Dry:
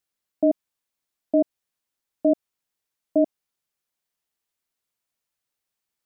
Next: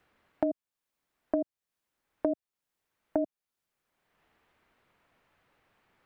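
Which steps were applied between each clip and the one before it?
three-band squash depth 100%; gain -7.5 dB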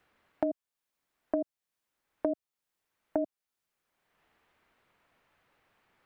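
low shelf 440 Hz -3 dB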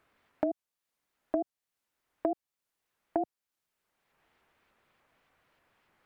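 shaped vibrato saw up 3.4 Hz, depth 250 cents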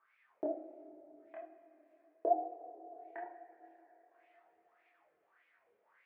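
wah 1.7 Hz 420–2400 Hz, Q 7.5; two-slope reverb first 0.34 s, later 4.1 s, from -18 dB, DRR -0.5 dB; chorus voices 2, 0.41 Hz, delay 26 ms, depth 1.9 ms; gain +9.5 dB

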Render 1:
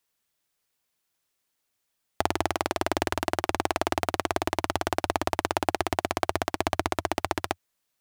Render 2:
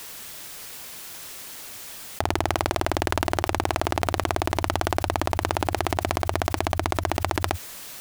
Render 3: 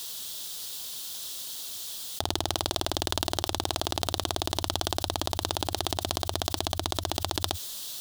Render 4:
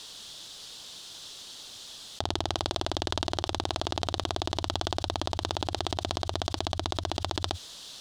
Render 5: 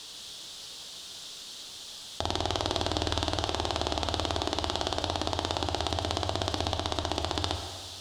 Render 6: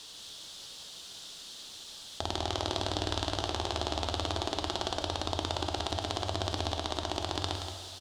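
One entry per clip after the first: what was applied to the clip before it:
fast leveller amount 100%; gain -1 dB
resonant high shelf 2800 Hz +7.5 dB, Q 3; gain -6.5 dB
air absorption 87 m
plate-style reverb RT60 1.7 s, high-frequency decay 0.9×, DRR 4 dB
echo 0.175 s -8.5 dB; gain -3.5 dB

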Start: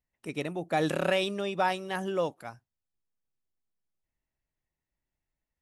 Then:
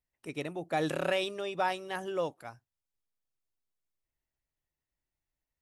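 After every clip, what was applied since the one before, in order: bell 200 Hz -10 dB 0.23 oct; gain -3 dB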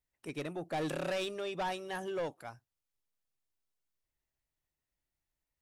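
soft clip -30.5 dBFS, distortion -10 dB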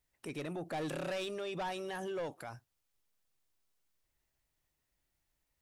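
limiter -40 dBFS, peak gain reduction 9.5 dB; gain +6.5 dB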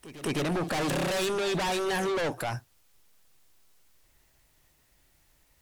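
sine folder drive 5 dB, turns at -33.5 dBFS; pre-echo 0.208 s -16 dB; gain +8 dB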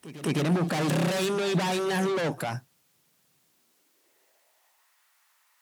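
high-pass sweep 160 Hz -> 1100 Hz, 3.4–4.94

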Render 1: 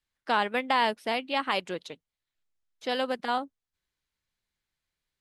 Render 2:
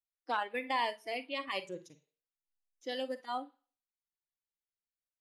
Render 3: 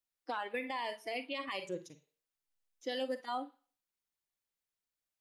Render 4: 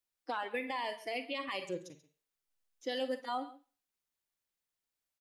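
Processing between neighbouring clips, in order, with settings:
Schroeder reverb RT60 0.46 s, DRR 10 dB; spectral noise reduction 16 dB; gain -7 dB
limiter -30.5 dBFS, peak gain reduction 11 dB; gain +3 dB
echo 0.136 s -17 dB; gain +1 dB

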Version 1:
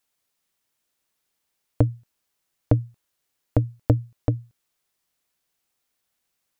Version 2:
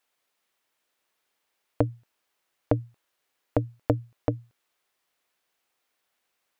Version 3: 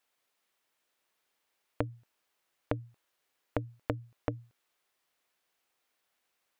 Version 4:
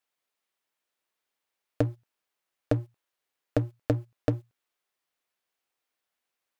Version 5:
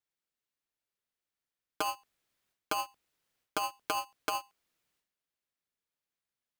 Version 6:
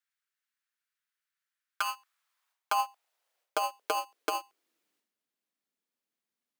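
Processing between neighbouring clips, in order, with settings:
tone controls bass -12 dB, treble -8 dB; in parallel at +0.5 dB: limiter -15 dBFS, peak gain reduction 7 dB; on the sum: gain -1.5 dB
compressor 10:1, threshold -26 dBFS, peak gain reduction 10 dB; gain -2 dB
sample leveller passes 3
transient shaper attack 0 dB, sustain +12 dB; polarity switched at an audio rate 920 Hz; gain -8.5 dB
high-pass sweep 1500 Hz -> 230 Hz, 1.66–5.23

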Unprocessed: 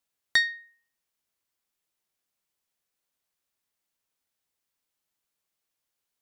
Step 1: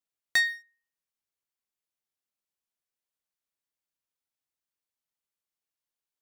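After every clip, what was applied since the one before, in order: sample leveller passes 2; gain -5.5 dB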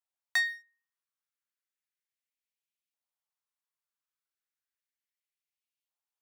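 LFO high-pass saw up 0.34 Hz 740–2700 Hz; gain -5.5 dB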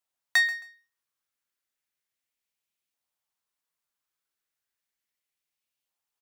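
feedback echo 0.134 s, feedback 22%, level -16 dB; gain +5.5 dB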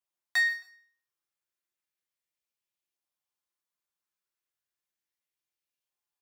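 reverb RT60 0.50 s, pre-delay 3 ms, DRR 0.5 dB; gain -7.5 dB

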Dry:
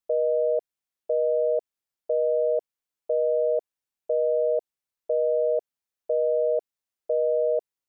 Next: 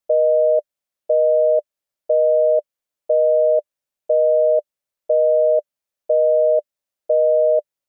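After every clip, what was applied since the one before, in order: bell 590 Hz +10.5 dB 0.24 oct; gain +2.5 dB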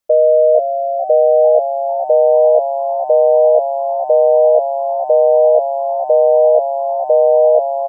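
frequency-shifting echo 0.448 s, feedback 51%, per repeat +69 Hz, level -8 dB; gain +5 dB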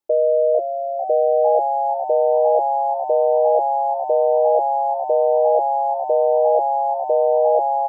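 small resonant body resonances 350/830 Hz, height 17 dB, ringing for 50 ms; gain -8 dB

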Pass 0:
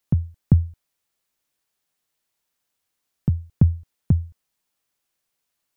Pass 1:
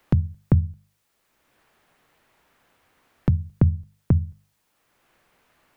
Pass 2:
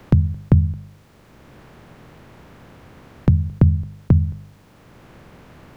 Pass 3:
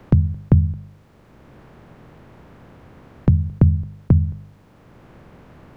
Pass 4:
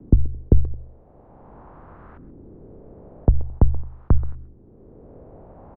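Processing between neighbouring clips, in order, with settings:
notches 50/100/150/200 Hz; three-band squash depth 70%; gain +2 dB
per-bin compression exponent 0.6; gain +3 dB
high shelf 2200 Hz -8 dB
LFO low-pass saw up 0.46 Hz 360–1500 Hz; frequency shift -81 Hz; speakerphone echo 0.13 s, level -17 dB

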